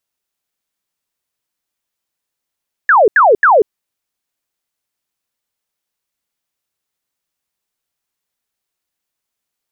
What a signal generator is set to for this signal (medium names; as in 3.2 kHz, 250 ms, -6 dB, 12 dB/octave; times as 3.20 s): burst of laser zaps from 1.8 kHz, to 380 Hz, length 0.19 s sine, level -5 dB, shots 3, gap 0.08 s